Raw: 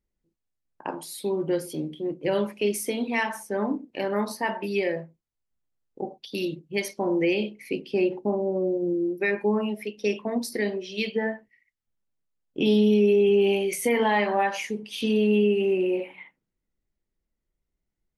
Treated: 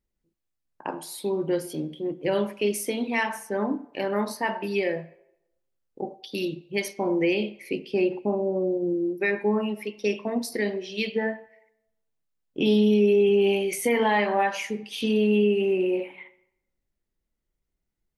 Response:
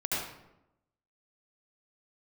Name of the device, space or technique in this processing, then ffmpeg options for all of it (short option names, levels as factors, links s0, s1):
filtered reverb send: -filter_complex "[0:a]asplit=2[s0][s1];[s1]highpass=490,lowpass=4500[s2];[1:a]atrim=start_sample=2205[s3];[s2][s3]afir=irnorm=-1:irlink=0,volume=0.0631[s4];[s0][s4]amix=inputs=2:normalize=0"